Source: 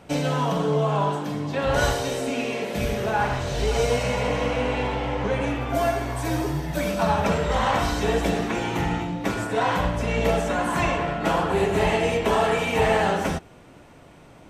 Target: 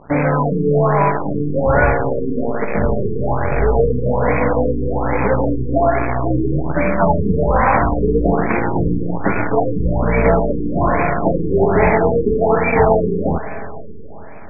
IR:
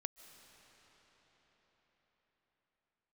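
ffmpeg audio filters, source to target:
-filter_complex "[0:a]acrusher=bits=5:dc=4:mix=0:aa=0.000001,asplit=2[link_01][link_02];[1:a]atrim=start_sample=2205,asetrate=57330,aresample=44100,highshelf=frequency=3300:gain=5[link_03];[link_02][link_03]afir=irnorm=-1:irlink=0,volume=9.5dB[link_04];[link_01][link_04]amix=inputs=2:normalize=0,afftfilt=real='re*lt(b*sr/1024,460*pow(2600/460,0.5+0.5*sin(2*PI*1.2*pts/sr)))':imag='im*lt(b*sr/1024,460*pow(2600/460,0.5+0.5*sin(2*PI*1.2*pts/sr)))':win_size=1024:overlap=0.75"

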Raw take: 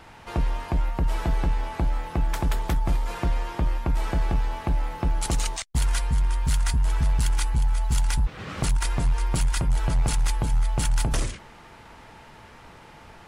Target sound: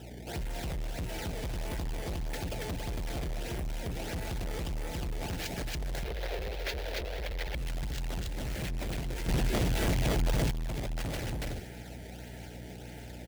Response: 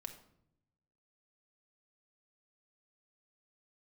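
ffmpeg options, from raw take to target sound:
-filter_complex "[0:a]acrusher=samples=19:mix=1:aa=0.000001:lfo=1:lforange=30.4:lforate=1.6,asuperstop=centerf=1100:order=4:qfactor=1.4,asplit=2[link_01][link_02];[link_02]aecho=0:1:280:0.596[link_03];[link_01][link_03]amix=inputs=2:normalize=0,aeval=exprs='val(0)+0.00708*(sin(2*PI*60*n/s)+sin(2*PI*2*60*n/s)/2+sin(2*PI*3*60*n/s)/3+sin(2*PI*4*60*n/s)/4+sin(2*PI*5*60*n/s)/5)':channel_layout=same,highpass=59,alimiter=limit=-18.5dB:level=0:latency=1:release=270,volume=32dB,asoftclip=hard,volume=-32dB,asettb=1/sr,asplit=3[link_04][link_05][link_06];[link_04]atrim=end=6.044[link_07];[link_05]atrim=start=6.04:end=7.55,asetpts=PTS-STARTPTS,afade=type=in:duration=0.004:curve=qsin,afade=type=out:start_time=1.506:duration=0.004:curve=qsin,equalizer=frequency=125:width_type=o:width=1:gain=-9,equalizer=frequency=250:width_type=o:width=1:gain=-9,equalizer=frequency=500:width_type=o:width=1:gain=11,equalizer=frequency=2000:width_type=o:width=1:gain=4,equalizer=frequency=4000:width_type=o:width=1:gain=5,equalizer=frequency=8000:width_type=o:width=1:gain=-8[link_08];[link_06]atrim=start=7.546[link_09];[link_07][link_08]acrossfade=duration=0.004:curve1=hsin:curve2=qsin[link_10];[link_10][link_09]acrossfade=duration=0.004:curve1=qsin:curve2=hsin,asettb=1/sr,asplit=3[link_11][link_12][link_13];[link_11]atrim=end=9.284[link_14];[link_12]atrim=start=9.28:end=10.51,asetpts=PTS-STARTPTS,afade=type=in:duration=0.004:curve=qsin,afade=type=out:start_time=1.226:duration=0.004:curve=qsin,acontrast=85[link_15];[link_13]atrim=start=10.506[link_16];[link_14][link_15]acrossfade=duration=0.004:curve1=hsin:curve2=qsin[link_17];[link_17][link_16]acrossfade=duration=0.004:curve1=qsin:curve2=hsin"

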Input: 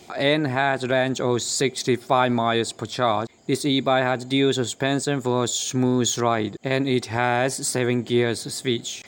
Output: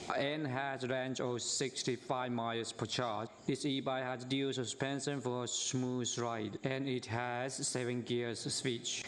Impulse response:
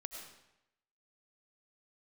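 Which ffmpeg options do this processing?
-filter_complex "[0:a]acompressor=threshold=-34dB:ratio=16,lowpass=frequency=8800:width=0.5412,lowpass=frequency=8800:width=1.3066,asplit=2[link_01][link_02];[1:a]atrim=start_sample=2205[link_03];[link_02][link_03]afir=irnorm=-1:irlink=0,volume=-9.5dB[link_04];[link_01][link_04]amix=inputs=2:normalize=0"

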